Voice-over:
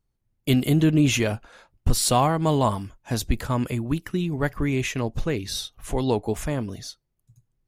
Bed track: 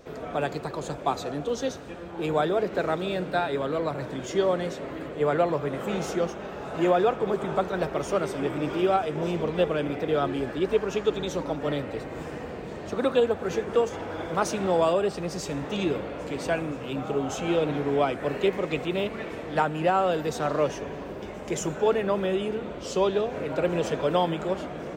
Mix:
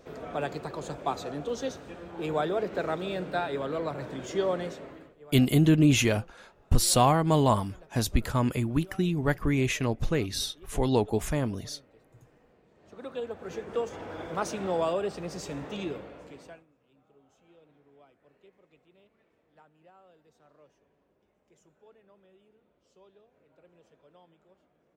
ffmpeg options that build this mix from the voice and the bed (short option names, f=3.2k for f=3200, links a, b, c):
-filter_complex "[0:a]adelay=4850,volume=-1.5dB[a];[1:a]volume=17dB,afade=t=out:st=4.61:d=0.55:silence=0.0749894,afade=t=in:st=12.75:d=1.35:silence=0.0891251,afade=t=out:st=15.58:d=1.07:silence=0.0334965[b];[a][b]amix=inputs=2:normalize=0"